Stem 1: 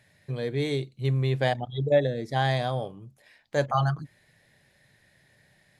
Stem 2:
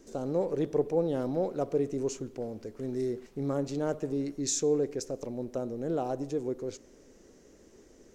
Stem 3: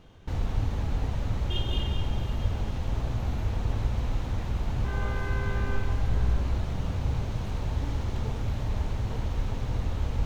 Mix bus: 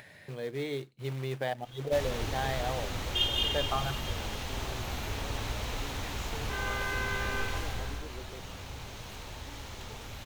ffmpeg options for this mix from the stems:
-filter_complex "[0:a]alimiter=limit=-15dB:level=0:latency=1:release=135,acrusher=bits=4:mode=log:mix=0:aa=0.000001,volume=-5dB[a];[1:a]acompressor=threshold=-38dB:ratio=6,adelay=1700,volume=-6dB[b];[2:a]crystalizer=i=9:c=0,adelay=1650,volume=-2.5dB,afade=t=out:st=7.57:d=0.46:silence=0.421697[c];[a][b][c]amix=inputs=3:normalize=0,bass=f=250:g=-7,treble=f=4k:g=-7,acompressor=mode=upward:threshold=-39dB:ratio=2.5"

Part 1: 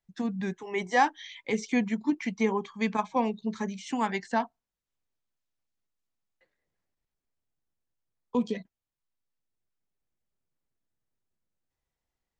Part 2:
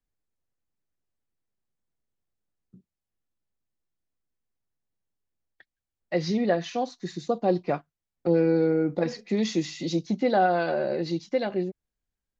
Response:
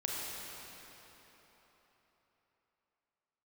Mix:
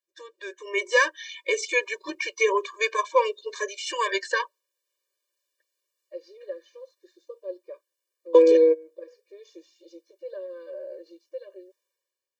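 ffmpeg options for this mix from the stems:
-filter_complex "[0:a]equalizer=f=520:w=0.55:g=-12,volume=3dB,asplit=2[a][b];[1:a]volume=-8dB[c];[b]apad=whole_len=546631[d];[c][d]sidechaingate=range=-24dB:threshold=-54dB:ratio=16:detection=peak[e];[a][e]amix=inputs=2:normalize=0,equalizer=f=560:t=o:w=0.4:g=11.5,dynaudnorm=f=110:g=11:m=13dB,afftfilt=real='re*eq(mod(floor(b*sr/1024/310),2),1)':imag='im*eq(mod(floor(b*sr/1024/310),2),1)':win_size=1024:overlap=0.75"

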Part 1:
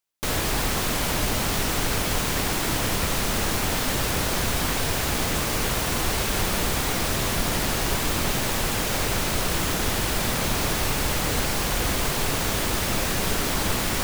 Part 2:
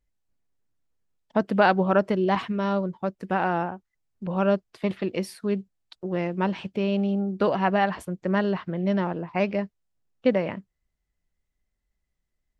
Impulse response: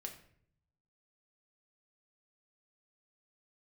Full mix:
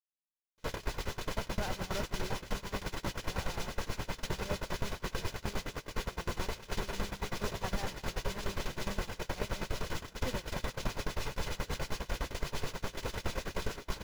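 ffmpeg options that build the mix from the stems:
-filter_complex "[0:a]equalizer=f=8.5k:t=o:w=0.23:g=-7,aecho=1:1:2:0.33,acrossover=split=2100[a][b];[a]aeval=exprs='val(0)*(1-0.7/2+0.7/2*cos(2*PI*9.6*n/s))':c=same[c];[b]aeval=exprs='val(0)*(1-0.7/2-0.7/2*cos(2*PI*9.6*n/s))':c=same[d];[c][d]amix=inputs=2:normalize=0,adelay=350,volume=1.5dB,asplit=2[e][f];[f]volume=-4.5dB[g];[1:a]volume=-7.5dB,asplit=2[h][i];[i]volume=-11dB[j];[2:a]atrim=start_sample=2205[k];[g][k]afir=irnorm=-1:irlink=0[l];[j]aecho=0:1:183:1[m];[e][h][l][m]amix=inputs=4:normalize=0,acrossover=split=8200[n][o];[o]acompressor=threshold=-41dB:ratio=4:attack=1:release=60[p];[n][p]amix=inputs=2:normalize=0,agate=range=-44dB:threshold=-20dB:ratio=16:detection=peak,acompressor=threshold=-31dB:ratio=6"

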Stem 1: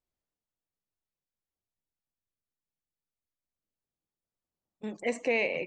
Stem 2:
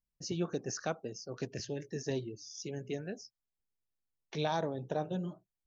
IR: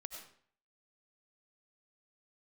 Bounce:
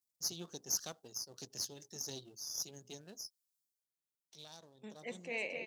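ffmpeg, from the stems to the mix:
-filter_complex "[0:a]highshelf=f=2.9k:g=9.5,volume=-13dB,asplit=2[a][b];[b]volume=-8dB[c];[1:a]aeval=exprs='if(lt(val(0),0),0.447*val(0),val(0))':c=same,aexciter=amount=5:drive=9.1:freq=3.4k,aeval=exprs='0.335*(cos(1*acos(clip(val(0)/0.335,-1,1)))-cos(1*PI/2))+0.0299*(cos(2*acos(clip(val(0)/0.335,-1,1)))-cos(2*PI/2))+0.0075*(cos(6*acos(clip(val(0)/0.335,-1,1)))-cos(6*PI/2))+0.00596*(cos(7*acos(clip(val(0)/0.335,-1,1)))-cos(7*PI/2))':c=same,volume=-3.5dB,afade=t=out:st=3.58:d=0.31:silence=0.251189,afade=t=in:st=4.89:d=0.22:silence=0.421697,asplit=2[d][e];[e]apad=whole_len=249909[f];[a][f]sidechaincompress=threshold=-56dB:ratio=8:attack=8.5:release=144[g];[c]aecho=0:1:256:1[h];[g][d][h]amix=inputs=3:normalize=0,highpass=94"

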